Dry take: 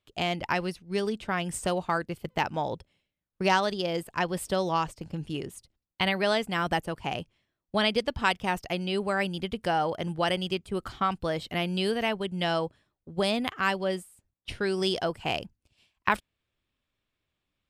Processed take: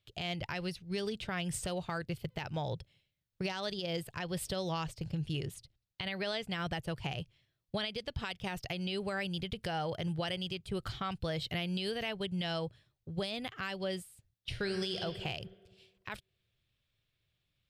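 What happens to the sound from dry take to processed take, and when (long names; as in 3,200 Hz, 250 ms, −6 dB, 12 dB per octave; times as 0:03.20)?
0:05.54–0:06.84: high-shelf EQ 9,700 Hz −7.5 dB
0:14.52–0:15.01: thrown reverb, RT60 1.5 s, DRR 5 dB
whole clip: octave-band graphic EQ 125/250/1,000/4,000/8,000 Hz +10/−9/−7/+5/−3 dB; downward compressor 4 to 1, threshold −32 dBFS; brickwall limiter −26 dBFS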